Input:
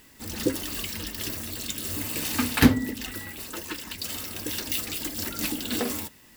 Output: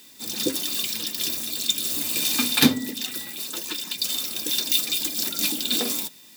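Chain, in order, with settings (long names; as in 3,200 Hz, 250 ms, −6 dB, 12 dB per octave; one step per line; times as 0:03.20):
high-pass filter 140 Hz 24 dB per octave
high shelf with overshoot 2,900 Hz +7 dB, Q 1.5
hollow resonant body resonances 2,400/3,600 Hz, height 15 dB, ringing for 60 ms
level −1 dB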